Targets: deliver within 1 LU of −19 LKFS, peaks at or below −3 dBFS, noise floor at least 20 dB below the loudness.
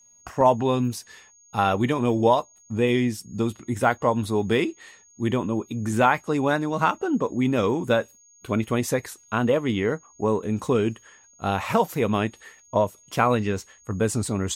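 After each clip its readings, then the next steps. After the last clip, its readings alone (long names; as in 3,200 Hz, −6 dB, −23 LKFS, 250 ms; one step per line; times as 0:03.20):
number of dropouts 1; longest dropout 1.2 ms; interfering tone 6,600 Hz; level of the tone −53 dBFS; integrated loudness −24.0 LKFS; sample peak −6.0 dBFS; target loudness −19.0 LKFS
→ repair the gap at 0:00.41, 1.2 ms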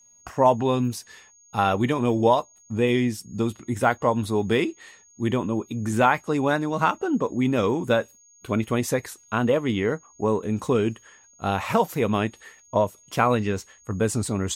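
number of dropouts 0; interfering tone 6,600 Hz; level of the tone −53 dBFS
→ notch filter 6,600 Hz, Q 30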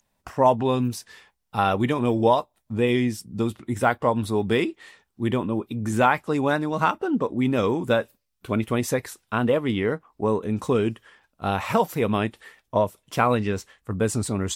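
interfering tone none found; integrated loudness −24.0 LKFS; sample peak −6.0 dBFS; target loudness −19.0 LKFS
→ level +5 dB
brickwall limiter −3 dBFS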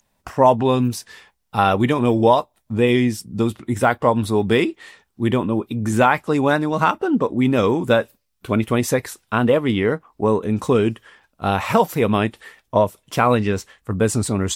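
integrated loudness −19.5 LKFS; sample peak −3.0 dBFS; background noise floor −70 dBFS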